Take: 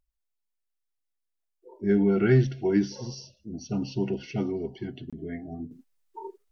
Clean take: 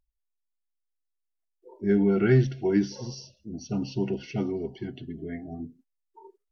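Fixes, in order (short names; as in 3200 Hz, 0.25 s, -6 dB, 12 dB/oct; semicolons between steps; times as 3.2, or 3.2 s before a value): interpolate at 5.1, 26 ms; gain correction -10.5 dB, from 5.71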